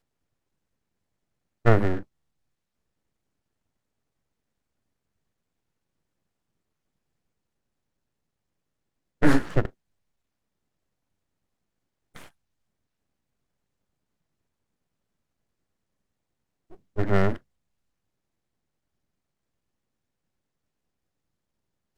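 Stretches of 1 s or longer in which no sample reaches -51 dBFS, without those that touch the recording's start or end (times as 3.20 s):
2.03–9.22 s
9.70–12.15 s
12.29–16.70 s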